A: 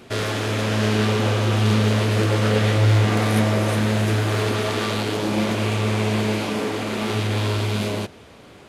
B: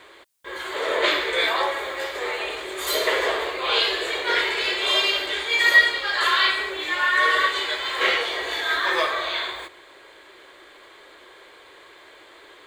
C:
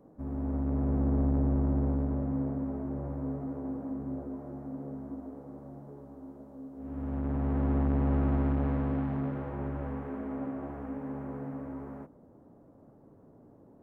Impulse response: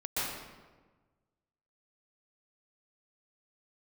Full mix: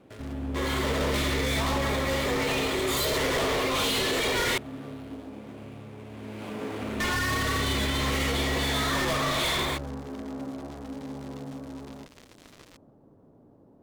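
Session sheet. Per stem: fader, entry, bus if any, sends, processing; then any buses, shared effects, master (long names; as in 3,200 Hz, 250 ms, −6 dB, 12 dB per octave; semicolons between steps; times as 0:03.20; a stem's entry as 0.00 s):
0:05.96 −15.5 dB → 0:06.64 −3 dB, 0.00 s, no send, running median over 9 samples; downward compressor 6 to 1, threshold −28 dBFS, peak gain reduction 14 dB
−12.5 dB, 0.10 s, muted 0:04.58–0:07.00, no send, notch filter 1,600 Hz, Q 8.2; fuzz pedal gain 36 dB, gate −43 dBFS; low-shelf EQ 280 Hz +9.5 dB
0.0 dB, 0.00 s, no send, running median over 15 samples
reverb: not used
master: brickwall limiter −19.5 dBFS, peak gain reduction 5.5 dB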